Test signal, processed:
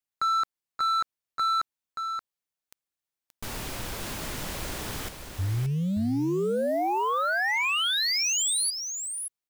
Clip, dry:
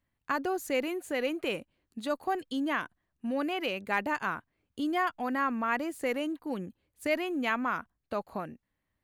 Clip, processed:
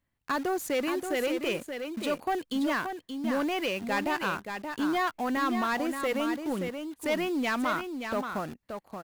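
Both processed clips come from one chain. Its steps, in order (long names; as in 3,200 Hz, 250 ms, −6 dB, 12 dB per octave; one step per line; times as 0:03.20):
in parallel at −4 dB: bit reduction 7 bits
on the sum: soft clipping −22.5 dBFS
single-tap delay 577 ms −7 dB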